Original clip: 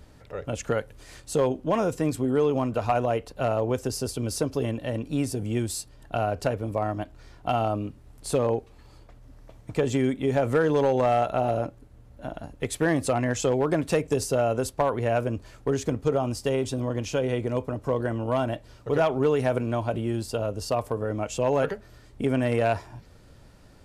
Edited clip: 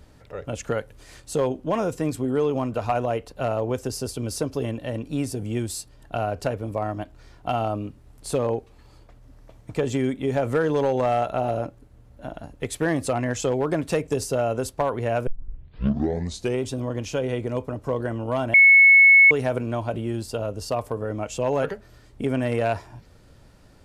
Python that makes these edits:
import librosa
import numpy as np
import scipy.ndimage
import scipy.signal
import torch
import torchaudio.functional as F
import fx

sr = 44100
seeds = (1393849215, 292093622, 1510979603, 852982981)

y = fx.edit(x, sr, fx.tape_start(start_s=15.27, length_s=1.35),
    fx.bleep(start_s=18.54, length_s=0.77, hz=2200.0, db=-9.0), tone=tone)